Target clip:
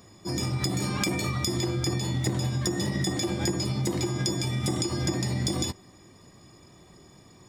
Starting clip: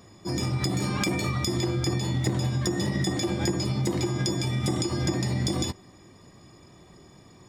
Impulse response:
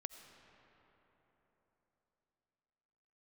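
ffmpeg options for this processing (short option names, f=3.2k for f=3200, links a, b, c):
-af "highshelf=f=5.8k:g=5.5,volume=-1.5dB"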